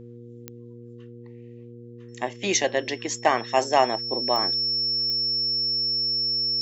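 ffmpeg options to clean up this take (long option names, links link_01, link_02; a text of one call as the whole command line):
ffmpeg -i in.wav -af "adeclick=threshold=4,bandreject=frequency=119.1:width_type=h:width=4,bandreject=frequency=238.2:width_type=h:width=4,bandreject=frequency=357.3:width_type=h:width=4,bandreject=frequency=476.4:width_type=h:width=4,bandreject=frequency=5400:width=30" out.wav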